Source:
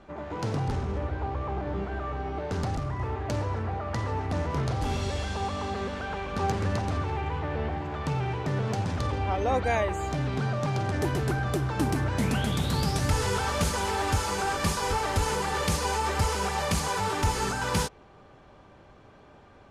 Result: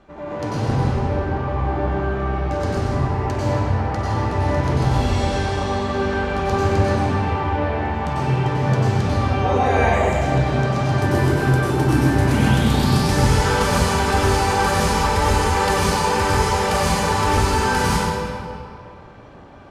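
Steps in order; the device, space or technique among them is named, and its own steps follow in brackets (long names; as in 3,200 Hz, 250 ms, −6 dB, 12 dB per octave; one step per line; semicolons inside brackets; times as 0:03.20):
stairwell (convolution reverb RT60 2.5 s, pre-delay 88 ms, DRR −8.5 dB)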